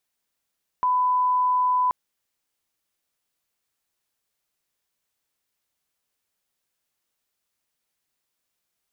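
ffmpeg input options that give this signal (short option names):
-f lavfi -i "sine=f=1000:d=1.08:r=44100,volume=0.06dB"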